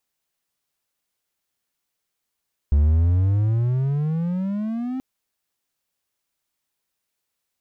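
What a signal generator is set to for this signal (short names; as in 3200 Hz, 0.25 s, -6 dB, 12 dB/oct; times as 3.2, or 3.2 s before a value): gliding synth tone triangle, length 2.28 s, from 70.2 Hz, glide +23 st, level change -11.5 dB, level -11 dB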